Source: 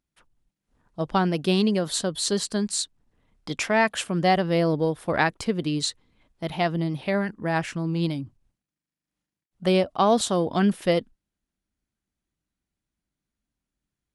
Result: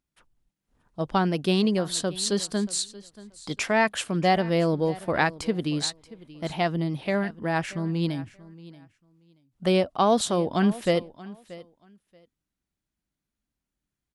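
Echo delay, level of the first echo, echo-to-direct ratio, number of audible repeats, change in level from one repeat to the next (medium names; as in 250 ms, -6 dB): 631 ms, -19.0 dB, -19.0 dB, 2, -15.0 dB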